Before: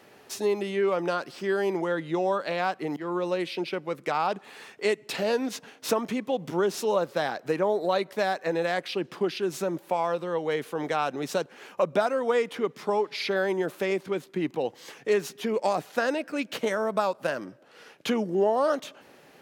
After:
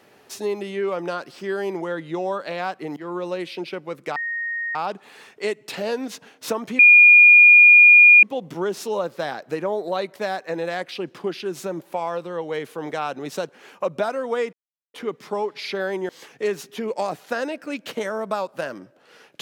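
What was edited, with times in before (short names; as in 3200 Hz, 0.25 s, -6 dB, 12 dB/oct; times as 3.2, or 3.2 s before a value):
4.16 add tone 1860 Hz -24 dBFS 0.59 s
6.2 add tone 2430 Hz -6.5 dBFS 1.44 s
12.5 insert silence 0.41 s
13.65–14.75 cut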